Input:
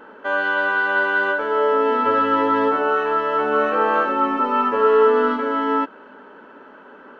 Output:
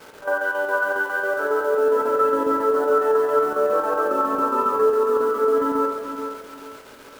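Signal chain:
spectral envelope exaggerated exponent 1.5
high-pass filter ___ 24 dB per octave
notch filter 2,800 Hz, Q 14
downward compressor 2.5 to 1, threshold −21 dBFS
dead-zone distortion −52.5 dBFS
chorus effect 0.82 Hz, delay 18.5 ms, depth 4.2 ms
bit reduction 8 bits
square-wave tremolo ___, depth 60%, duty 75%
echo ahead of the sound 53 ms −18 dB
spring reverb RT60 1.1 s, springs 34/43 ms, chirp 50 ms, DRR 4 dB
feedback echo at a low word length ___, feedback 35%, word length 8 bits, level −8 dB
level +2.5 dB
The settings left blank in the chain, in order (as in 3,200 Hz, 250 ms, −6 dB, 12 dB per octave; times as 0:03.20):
83 Hz, 7.3 Hz, 433 ms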